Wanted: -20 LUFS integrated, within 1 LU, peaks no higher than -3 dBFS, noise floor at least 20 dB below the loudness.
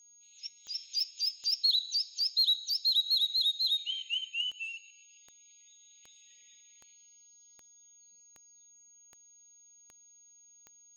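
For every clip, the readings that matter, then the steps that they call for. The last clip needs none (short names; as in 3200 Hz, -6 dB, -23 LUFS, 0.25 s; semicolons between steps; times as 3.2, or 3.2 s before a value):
clicks 14; steady tone 6600 Hz; tone level -57 dBFS; loudness -28.5 LUFS; peak -19.0 dBFS; loudness target -20.0 LUFS
-> de-click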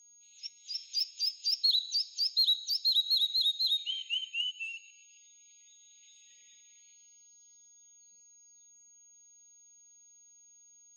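clicks 0; steady tone 6600 Hz; tone level -57 dBFS
-> notch 6600 Hz, Q 30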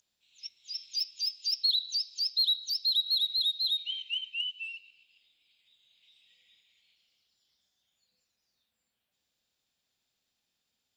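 steady tone none; loudness -28.5 LUFS; peak -19.0 dBFS; loudness target -20.0 LUFS
-> gain +8.5 dB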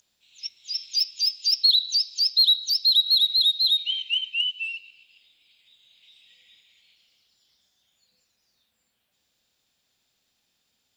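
loudness -20.0 LUFS; peak -10.5 dBFS; noise floor -74 dBFS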